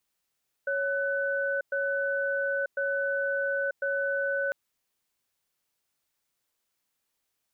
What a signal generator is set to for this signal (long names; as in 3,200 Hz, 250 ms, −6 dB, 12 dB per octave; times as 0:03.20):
tone pair in a cadence 555 Hz, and 1,500 Hz, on 0.94 s, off 0.11 s, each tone −28.5 dBFS 3.85 s